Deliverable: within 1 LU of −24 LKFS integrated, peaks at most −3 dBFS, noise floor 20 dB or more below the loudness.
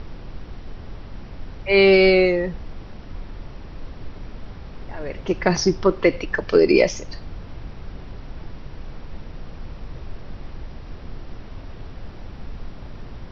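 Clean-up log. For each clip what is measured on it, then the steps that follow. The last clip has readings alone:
background noise floor −38 dBFS; target noise floor −39 dBFS; integrated loudness −18.5 LKFS; sample peak −1.5 dBFS; target loudness −24.0 LKFS
→ noise reduction from a noise print 6 dB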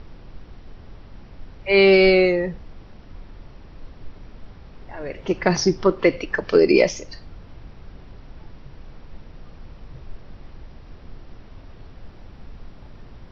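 background noise floor −44 dBFS; integrated loudness −18.0 LKFS; sample peak −1.5 dBFS; target loudness −24.0 LKFS
→ level −6 dB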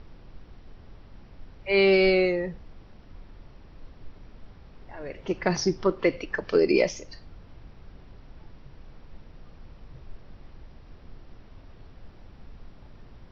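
integrated loudness −24.0 LKFS; sample peak −7.5 dBFS; background noise floor −50 dBFS

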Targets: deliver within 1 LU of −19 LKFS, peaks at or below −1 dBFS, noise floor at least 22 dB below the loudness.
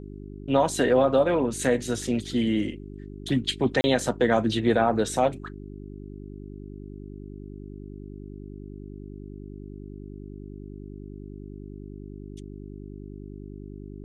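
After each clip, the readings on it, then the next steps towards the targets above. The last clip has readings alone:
number of dropouts 1; longest dropout 30 ms; mains hum 50 Hz; hum harmonics up to 400 Hz; level of the hum −38 dBFS; integrated loudness −24.0 LKFS; sample peak −9.0 dBFS; target loudness −19.0 LKFS
→ repair the gap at 0:03.81, 30 ms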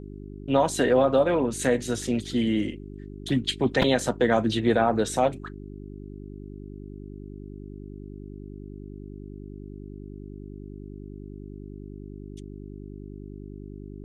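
number of dropouts 0; mains hum 50 Hz; hum harmonics up to 400 Hz; level of the hum −38 dBFS
→ hum removal 50 Hz, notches 8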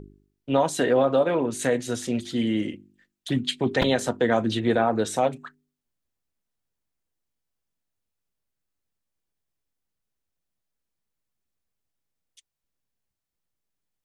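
mains hum none found; integrated loudness −24.5 LKFS; sample peak −9.0 dBFS; target loudness −19.0 LKFS
→ level +5.5 dB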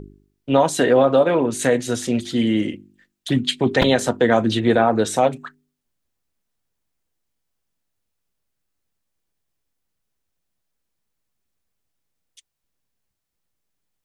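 integrated loudness −19.0 LKFS; sample peak −3.5 dBFS; background noise floor −78 dBFS

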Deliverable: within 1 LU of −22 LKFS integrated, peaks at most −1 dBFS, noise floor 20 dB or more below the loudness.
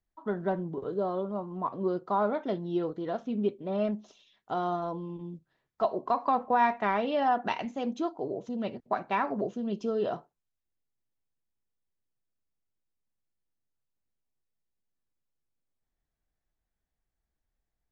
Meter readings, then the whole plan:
integrated loudness −31.0 LKFS; sample peak −14.5 dBFS; target loudness −22.0 LKFS
→ level +9 dB

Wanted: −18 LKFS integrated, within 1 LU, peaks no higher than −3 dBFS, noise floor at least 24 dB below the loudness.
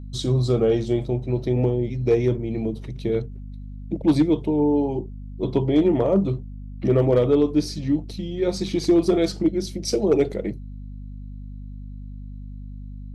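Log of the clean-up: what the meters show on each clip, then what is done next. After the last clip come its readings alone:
share of clipped samples 0.2%; peaks flattened at −10.5 dBFS; mains hum 50 Hz; hum harmonics up to 250 Hz; level of the hum −33 dBFS; integrated loudness −22.5 LKFS; sample peak −10.5 dBFS; target loudness −18.0 LKFS
→ clipped peaks rebuilt −10.5 dBFS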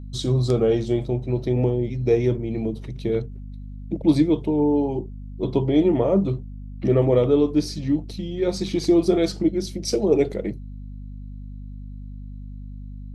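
share of clipped samples 0.0%; mains hum 50 Hz; hum harmonics up to 250 Hz; level of the hum −33 dBFS
→ hum removal 50 Hz, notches 5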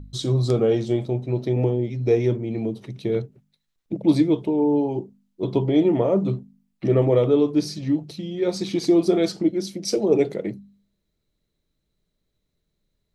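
mains hum none found; integrated loudness −22.5 LKFS; sample peak −6.0 dBFS; target loudness −18.0 LKFS
→ level +4.5 dB
brickwall limiter −3 dBFS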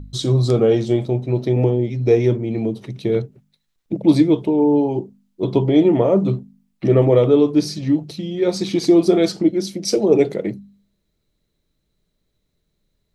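integrated loudness −18.0 LKFS; sample peak −3.0 dBFS; background noise floor −72 dBFS

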